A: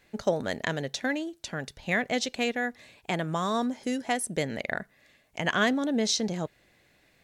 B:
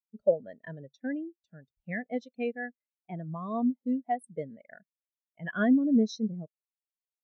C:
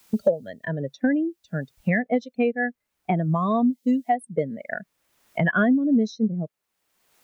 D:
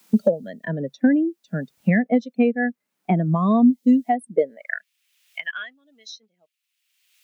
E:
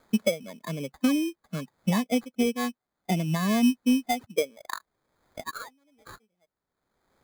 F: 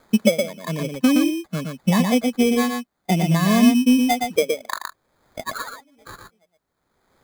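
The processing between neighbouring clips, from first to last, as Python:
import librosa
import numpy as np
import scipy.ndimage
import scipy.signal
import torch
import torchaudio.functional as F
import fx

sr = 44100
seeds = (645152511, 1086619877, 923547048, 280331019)

y1 = fx.spectral_expand(x, sr, expansion=2.5)
y2 = fx.band_squash(y1, sr, depth_pct=100)
y2 = y2 * librosa.db_to_amplitude(8.5)
y3 = fx.filter_sweep_highpass(y2, sr, from_hz=200.0, to_hz=2700.0, start_s=4.25, end_s=4.83, q=2.2)
y4 = fx.sample_hold(y3, sr, seeds[0], rate_hz=2800.0, jitter_pct=0)
y4 = y4 * librosa.db_to_amplitude(-6.5)
y5 = y4 + 10.0 ** (-4.5 / 20.0) * np.pad(y4, (int(118 * sr / 1000.0), 0))[:len(y4)]
y5 = y5 * librosa.db_to_amplitude(6.5)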